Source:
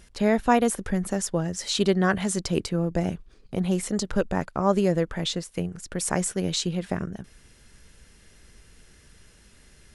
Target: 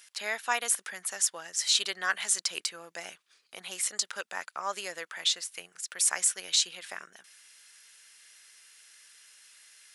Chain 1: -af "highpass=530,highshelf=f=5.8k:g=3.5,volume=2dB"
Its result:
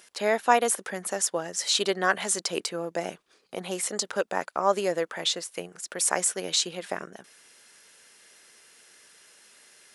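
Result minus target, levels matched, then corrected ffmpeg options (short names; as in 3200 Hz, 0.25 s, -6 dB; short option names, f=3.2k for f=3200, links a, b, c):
500 Hz band +14.0 dB
-af "highpass=1.6k,highshelf=f=5.8k:g=3.5,volume=2dB"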